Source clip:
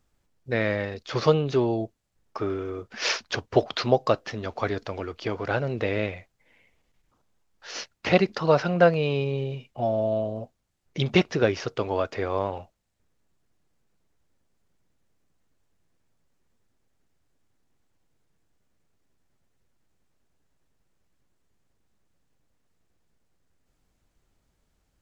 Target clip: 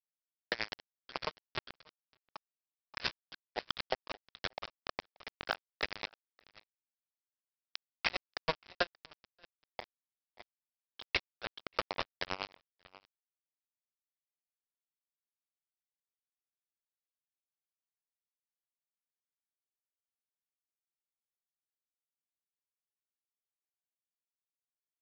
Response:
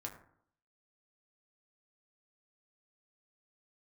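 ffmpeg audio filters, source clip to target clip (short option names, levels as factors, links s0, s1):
-af "afftfilt=real='re*gte(hypot(re,im),0.0355)':imag='im*gte(hypot(re,im),0.0355)':win_size=1024:overlap=0.75,highpass=f=590:w=0.5412,highpass=f=590:w=1.3066,tiltshelf=f=1400:g=-5,bandreject=f=2900:w=23,acompressor=threshold=0.00891:ratio=8,aresample=11025,acrusher=bits=5:mix=0:aa=0.000001,aresample=44100,aecho=1:1:581:0.1,aeval=exprs='val(0)*pow(10,-21*(0.5-0.5*cos(2*PI*9.4*n/s))/20)':c=same,volume=3.55"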